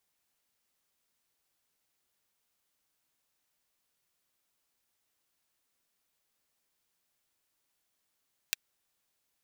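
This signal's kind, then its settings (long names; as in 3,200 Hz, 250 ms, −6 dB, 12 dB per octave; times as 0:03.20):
closed synth hi-hat, high-pass 2,200 Hz, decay 0.02 s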